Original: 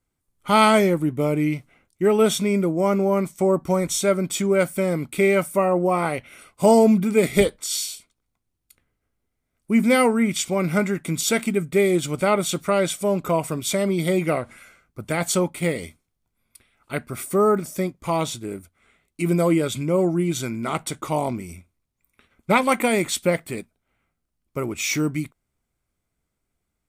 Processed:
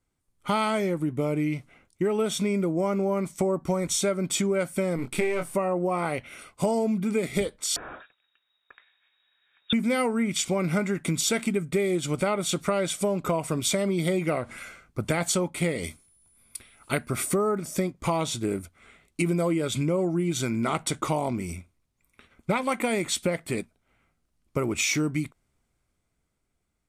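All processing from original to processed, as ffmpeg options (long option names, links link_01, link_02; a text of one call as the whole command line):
ffmpeg -i in.wav -filter_complex "[0:a]asettb=1/sr,asplit=3[link_01][link_02][link_03];[link_01]atrim=end=4.964[link_04];[link_02]atrim=start=4.96:end=5.55,asetpts=PTS-STARTPTS,afade=type=in:duration=0.004:curve=qsin,afade=type=out:start_time=0.586:duration=0.004:curve=qsin,aeval=exprs='if(lt(val(0),0),0.447*val(0),val(0))':channel_layout=same,asplit=2[link_05][link_06];[link_06]adelay=23,volume=-6dB[link_07];[link_05][link_07]amix=inputs=2:normalize=0,atrim=end_sample=26019[link_08];[link_03]atrim=start=5.546[link_09];[link_04][link_08]acrossfade=duration=0.004:curve1=hsin:curve2=qsin[link_10];[link_10][link_09]acrossfade=duration=0.004:curve1=qsin:curve2=hsin,asettb=1/sr,asplit=3[link_11][link_12][link_13];[link_11]atrim=end=7.764[link_14];[link_12]atrim=start=7.76:end=9.73,asetpts=PTS-STARTPTS,afade=type=in:duration=0.004:curve=qsin,afade=type=out:start_time=1.966:duration=0.004:curve=qsin,acompressor=threshold=-34dB:ratio=2.5:attack=3.2:release=140:knee=1:detection=peak,equalizer=frequency=2000:width_type=o:width=2.1:gain=13.5,lowpass=frequency=3200:width_type=q:width=0.5098,lowpass=frequency=3200:width_type=q:width=0.6013,lowpass=frequency=3200:width_type=q:width=0.9,lowpass=frequency=3200:width_type=q:width=2.563,afreqshift=-3800[link_15];[link_13]atrim=start=9.726[link_16];[link_14][link_15]acrossfade=duration=0.004:curve1=hsin:curve2=qsin[link_17];[link_17][link_16]acrossfade=duration=0.004:curve1=qsin:curve2=hsin,asettb=1/sr,asplit=3[link_18][link_19][link_20];[link_18]atrim=end=15.844[link_21];[link_19]atrim=start=15.84:end=17.08,asetpts=PTS-STARTPTS,afade=type=in:duration=0.004:curve=qsin,afade=type=out:start_time=1.236:duration=0.004:curve=qsin,highshelf=frequency=5300:gain=8,aeval=exprs='val(0)+0.000562*sin(2*PI*10000*n/s)':channel_layout=same[link_22];[link_20]atrim=start=17.076[link_23];[link_21][link_22]acrossfade=duration=0.004:curve1=hsin:curve2=qsin[link_24];[link_24][link_23]acrossfade=duration=0.004:curve1=qsin:curve2=hsin,dynaudnorm=framelen=260:gausssize=13:maxgain=8dB,lowpass=11000,acompressor=threshold=-23dB:ratio=6" out.wav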